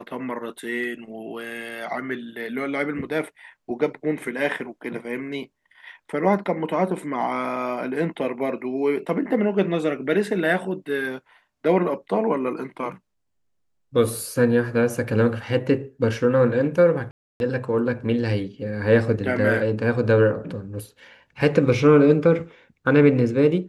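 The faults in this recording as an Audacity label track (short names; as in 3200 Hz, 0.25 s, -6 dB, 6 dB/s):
17.110000	17.400000	gap 0.291 s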